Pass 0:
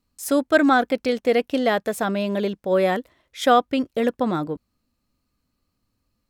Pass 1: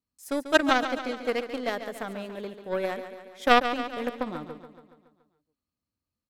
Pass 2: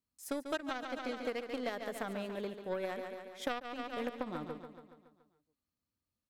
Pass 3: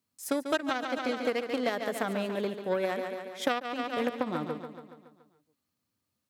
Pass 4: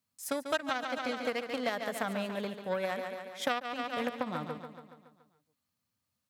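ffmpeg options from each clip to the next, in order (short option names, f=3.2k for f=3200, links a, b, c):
-filter_complex "[0:a]highpass=57,aeval=exprs='0.631*(cos(1*acos(clip(val(0)/0.631,-1,1)))-cos(1*PI/2))+0.178*(cos(3*acos(clip(val(0)/0.631,-1,1)))-cos(3*PI/2))':c=same,asplit=2[a][b];[b]aecho=0:1:141|282|423|564|705|846|987:0.299|0.173|0.1|0.0582|0.0338|0.0196|0.0114[c];[a][c]amix=inputs=2:normalize=0,volume=1.5dB"
-af "acompressor=threshold=-30dB:ratio=16,volume=-2.5dB"
-af "highpass=f=91:w=0.5412,highpass=f=91:w=1.3066,volume=8dB"
-af "equalizer=f=350:t=o:w=0.71:g=-10,volume=-1dB"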